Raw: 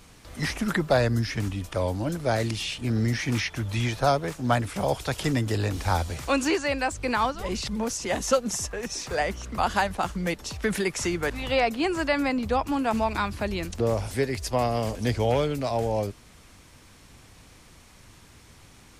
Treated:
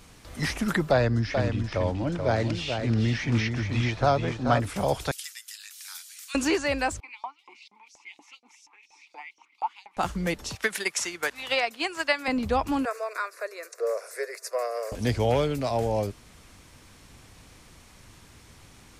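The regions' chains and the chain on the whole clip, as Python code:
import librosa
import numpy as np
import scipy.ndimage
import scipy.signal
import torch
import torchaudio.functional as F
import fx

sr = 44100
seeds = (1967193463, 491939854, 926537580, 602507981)

y = fx.chain(x, sr, fx.air_absorb(metres=110.0),
    fx.echo_single(ms=432, db=-6.0), at=(0.91, 4.6))
y = fx.chain(y, sr, fx.highpass(hz=1400.0, slope=24),
    fx.differentiator(), at=(5.11, 6.35))
y = fx.chain(y, sr, fx.vowel_filter(vowel='u'),
    fx.high_shelf(hz=8400.0, db=4.0),
    fx.filter_lfo_highpass(shape='saw_up', hz=4.2, low_hz=650.0, high_hz=6100.0, q=2.7), at=(7.0, 9.97))
y = fx.chain(y, sr, fx.highpass(hz=1300.0, slope=6),
    fx.transient(attack_db=8, sustain_db=-4), at=(10.55, 12.28))
y = fx.chain(y, sr, fx.cheby1_highpass(hz=460.0, order=4),
    fx.fixed_phaser(hz=850.0, stages=6), at=(12.85, 14.92))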